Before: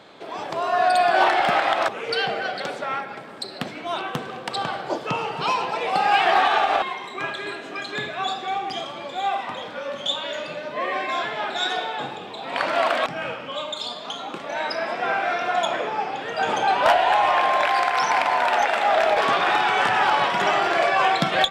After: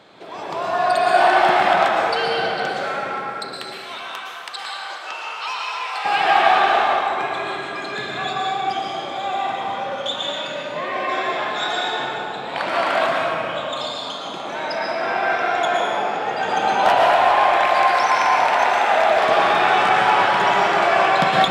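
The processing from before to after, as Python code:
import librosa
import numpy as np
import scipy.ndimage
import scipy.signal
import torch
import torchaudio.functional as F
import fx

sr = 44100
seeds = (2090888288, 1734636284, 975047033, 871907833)

y = fx.highpass(x, sr, hz=1300.0, slope=12, at=(3.56, 6.05))
y = fx.rev_plate(y, sr, seeds[0], rt60_s=2.6, hf_ratio=0.55, predelay_ms=100, drr_db=-3.0)
y = y * librosa.db_to_amplitude(-1.5)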